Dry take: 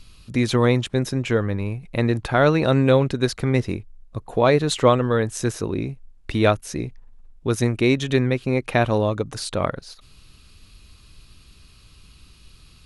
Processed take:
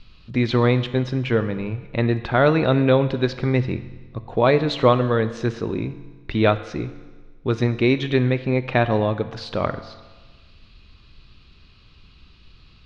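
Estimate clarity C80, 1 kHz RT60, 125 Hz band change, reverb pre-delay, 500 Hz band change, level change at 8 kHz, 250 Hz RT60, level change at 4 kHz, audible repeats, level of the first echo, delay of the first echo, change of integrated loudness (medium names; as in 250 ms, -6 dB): 14.5 dB, 1.4 s, +0.5 dB, 4 ms, 0.0 dB, under -15 dB, 1.4 s, -1.0 dB, no echo, no echo, no echo, 0.0 dB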